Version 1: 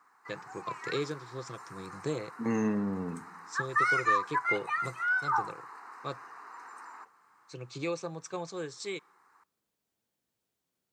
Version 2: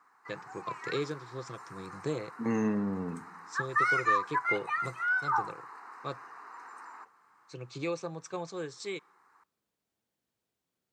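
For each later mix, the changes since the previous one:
master: add high shelf 5600 Hz -4.5 dB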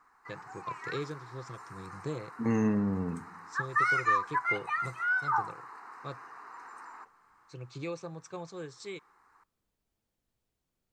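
first voice -4.5 dB; master: remove Bessel high-pass 180 Hz, order 2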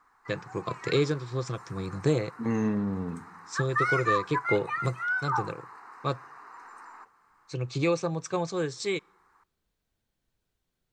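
first voice +12.0 dB

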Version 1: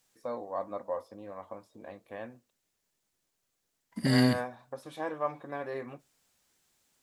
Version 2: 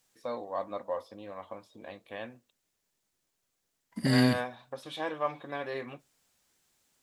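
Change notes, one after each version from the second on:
first voice: add bell 3300 Hz +12 dB 1.1 oct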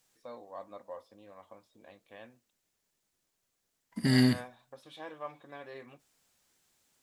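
first voice -10.0 dB

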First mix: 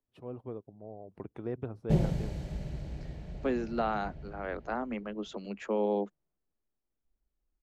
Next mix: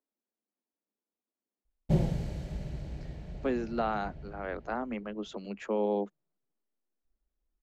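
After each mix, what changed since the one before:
first voice: muted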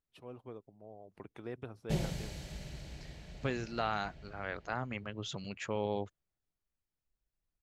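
first voice: unmuted; second voice: remove steep high-pass 200 Hz 96 dB/oct; master: add tilt shelf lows -8 dB, about 1400 Hz

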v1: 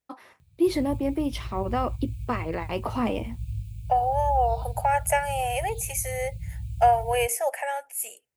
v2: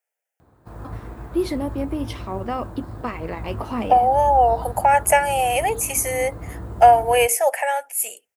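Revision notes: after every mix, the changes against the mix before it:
first voice: entry +0.75 s; second voice +7.5 dB; background: remove brick-wall FIR band-stop 170–2200 Hz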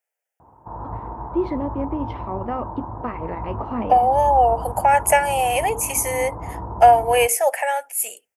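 first voice: add LPF 1700 Hz 12 dB/oct; background: add synth low-pass 930 Hz, resonance Q 7.7

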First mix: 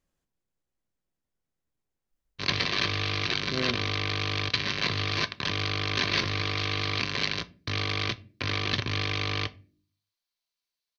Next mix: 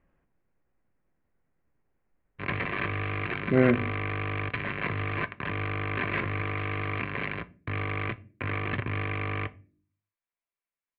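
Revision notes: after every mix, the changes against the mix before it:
speech +11.0 dB; master: add steep low-pass 2400 Hz 36 dB/oct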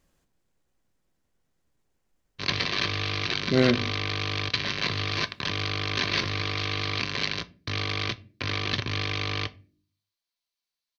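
master: remove steep low-pass 2400 Hz 36 dB/oct

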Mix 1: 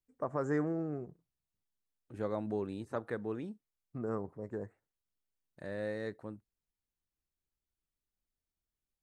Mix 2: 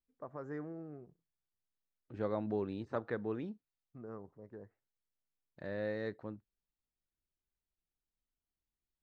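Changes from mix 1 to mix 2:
first voice -10.5 dB; master: add LPF 5100 Hz 24 dB/oct

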